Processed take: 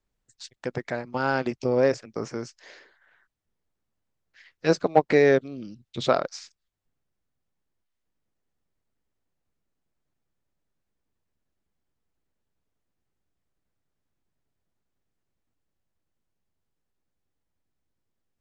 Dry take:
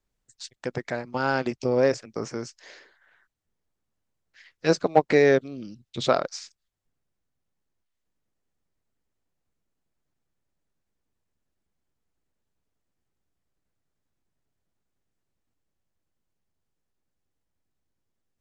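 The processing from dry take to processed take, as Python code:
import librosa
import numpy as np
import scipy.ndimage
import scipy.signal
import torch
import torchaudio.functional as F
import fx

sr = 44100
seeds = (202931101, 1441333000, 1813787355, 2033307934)

y = fx.high_shelf(x, sr, hz=6300.0, db=-6.5)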